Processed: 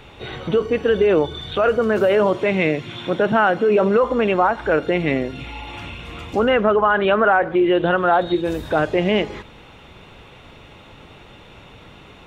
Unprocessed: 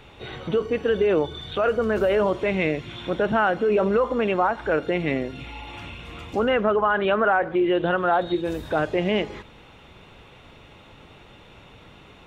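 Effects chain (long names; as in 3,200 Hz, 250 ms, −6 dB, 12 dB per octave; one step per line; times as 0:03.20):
0:01.77–0:04.03: high-pass filter 95 Hz 24 dB per octave
level +4.5 dB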